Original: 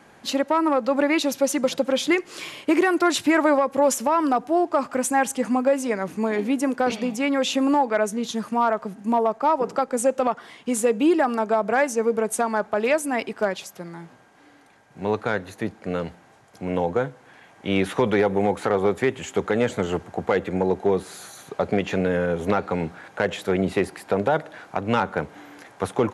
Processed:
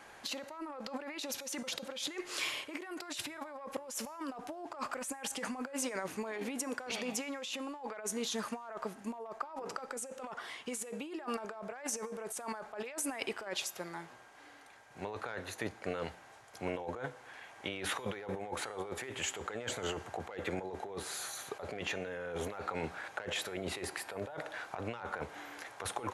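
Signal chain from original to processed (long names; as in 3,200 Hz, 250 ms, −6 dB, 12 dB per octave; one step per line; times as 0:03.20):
parametric band 180 Hz −13 dB 2.2 octaves
compressor whose output falls as the input rises −34 dBFS, ratio −1
tuned comb filter 120 Hz, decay 0.79 s, harmonics odd, mix 50%
level −1 dB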